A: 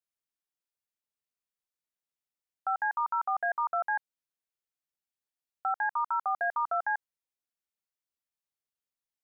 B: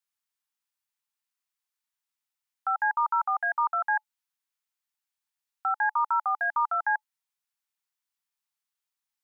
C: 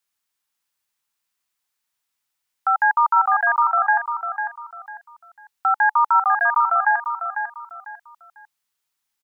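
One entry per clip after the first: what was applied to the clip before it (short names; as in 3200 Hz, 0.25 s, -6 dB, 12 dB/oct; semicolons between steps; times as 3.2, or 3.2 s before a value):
EQ curve 280 Hz 0 dB, 400 Hz -20 dB, 860 Hz +12 dB; gain -7.5 dB
feedback echo 0.498 s, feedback 29%, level -8 dB; gain +8.5 dB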